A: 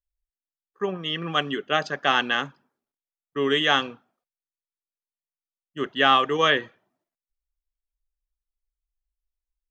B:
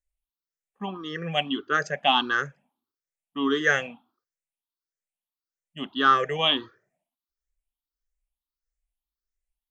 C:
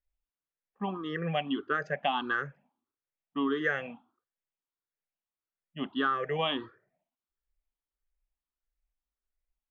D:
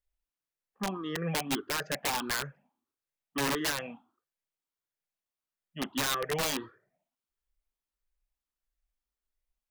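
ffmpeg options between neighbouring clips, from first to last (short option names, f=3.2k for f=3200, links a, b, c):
-af "afftfilt=real='re*pow(10,20/40*sin(2*PI*(0.53*log(max(b,1)*sr/1024/100)/log(2)-(1.6)*(pts-256)/sr)))':imag='im*pow(10,20/40*sin(2*PI*(0.53*log(max(b,1)*sr/1024/100)/log(2)-(1.6)*(pts-256)/sr)))':win_size=1024:overlap=0.75,volume=-5.5dB"
-af "lowpass=2.3k,acompressor=threshold=-26dB:ratio=5"
-af "aeval=exprs='(mod(15.8*val(0)+1,2)-1)/15.8':c=same"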